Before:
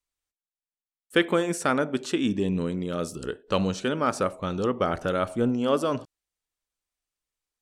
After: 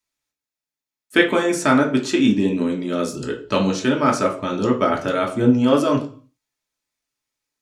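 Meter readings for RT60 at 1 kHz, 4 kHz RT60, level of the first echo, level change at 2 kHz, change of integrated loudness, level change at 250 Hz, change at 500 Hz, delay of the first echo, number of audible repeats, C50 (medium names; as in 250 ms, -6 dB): 0.40 s, 0.45 s, no echo, +8.0 dB, +7.5 dB, +9.0 dB, +6.0 dB, no echo, no echo, 11.5 dB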